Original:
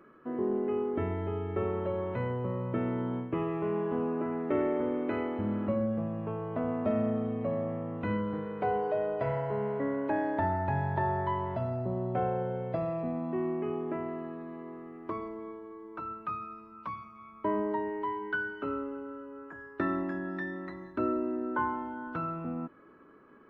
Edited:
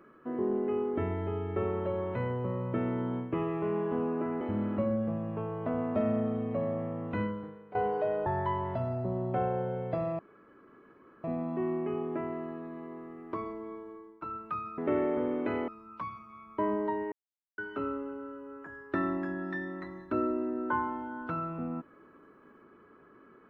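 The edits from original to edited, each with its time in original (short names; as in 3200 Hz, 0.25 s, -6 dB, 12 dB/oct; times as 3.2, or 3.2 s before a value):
4.41–5.31 move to 16.54
8.09–8.65 fade out quadratic, to -16 dB
9.16–11.07 cut
13 insert room tone 1.05 s
15.68–15.98 fade out linear, to -16.5 dB
17.98–18.44 mute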